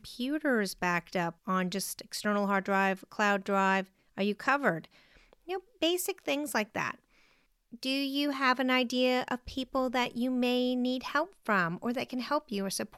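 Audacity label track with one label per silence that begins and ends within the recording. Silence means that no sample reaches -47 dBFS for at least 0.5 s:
6.950000	7.730000	silence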